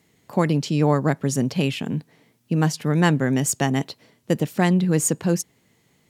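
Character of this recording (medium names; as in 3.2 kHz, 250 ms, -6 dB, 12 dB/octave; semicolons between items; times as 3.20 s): noise floor -64 dBFS; spectral tilt -5.5 dB/octave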